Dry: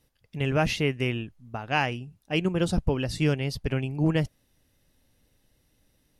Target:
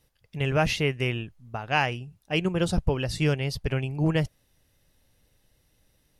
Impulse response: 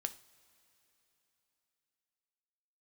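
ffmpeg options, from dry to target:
-af "equalizer=frequency=260:width_type=o:width=0.73:gain=-5.5,volume=1.5dB"

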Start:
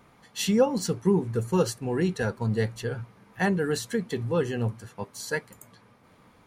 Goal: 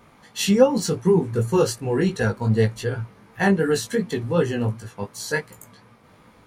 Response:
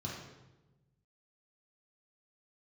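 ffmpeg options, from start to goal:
-af "flanger=delay=17.5:depth=2.9:speed=2.7,volume=8dB"

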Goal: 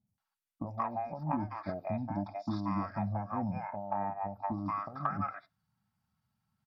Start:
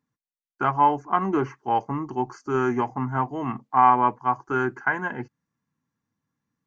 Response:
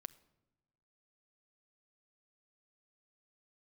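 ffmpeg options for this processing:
-filter_complex "[0:a]equalizer=frequency=480:width=2:gain=-13.5,acompressor=threshold=-31dB:ratio=20,asplit=2[link_01][link_02];[1:a]atrim=start_sample=2205,afade=type=out:start_time=0.2:duration=0.01,atrim=end_sample=9261,asetrate=66150,aresample=44100[link_03];[link_02][link_03]afir=irnorm=-1:irlink=0,volume=13dB[link_04];[link_01][link_04]amix=inputs=2:normalize=0,asetrate=35002,aresample=44100,atempo=1.25992,acrossover=split=610|6000[link_05][link_06][link_07];[link_07]adelay=70[link_08];[link_06]adelay=180[link_09];[link_05][link_09][link_08]amix=inputs=3:normalize=0,volume=-6dB"

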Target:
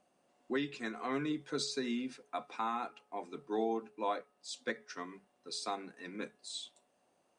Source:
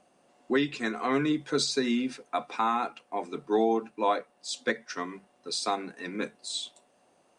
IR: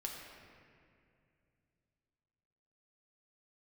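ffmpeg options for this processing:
-af "bandreject=frequency=421.9:width_type=h:width=4,bandreject=frequency=843.8:width_type=h:width=4,bandreject=frequency=1265.7:width_type=h:width=4,bandreject=frequency=1687.6:width_type=h:width=4,volume=-9dB"

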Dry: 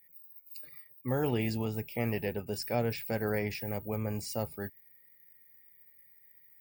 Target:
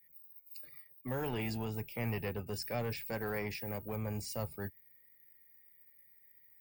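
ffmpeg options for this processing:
ffmpeg -i in.wav -filter_complex "[0:a]acrossover=split=130|760|2100[link_01][link_02][link_03][link_04];[link_01]aphaser=in_gain=1:out_gain=1:delay=3.2:decay=0.44:speed=0.43:type=triangular[link_05];[link_02]volume=34dB,asoftclip=hard,volume=-34dB[link_06];[link_05][link_06][link_03][link_04]amix=inputs=4:normalize=0,volume=-3dB" out.wav

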